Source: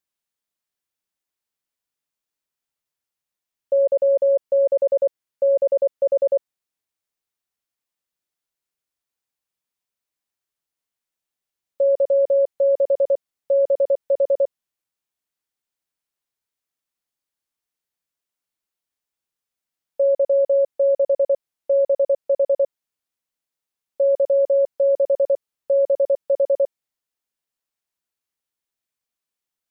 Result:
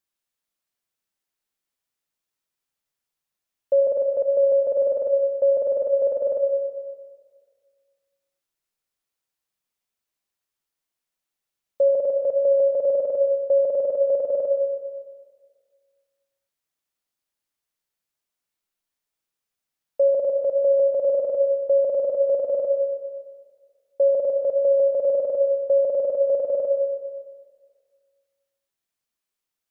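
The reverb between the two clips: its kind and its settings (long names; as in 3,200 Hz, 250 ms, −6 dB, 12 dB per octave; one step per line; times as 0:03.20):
comb and all-pass reverb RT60 1.7 s, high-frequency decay 0.85×, pre-delay 45 ms, DRR 4.5 dB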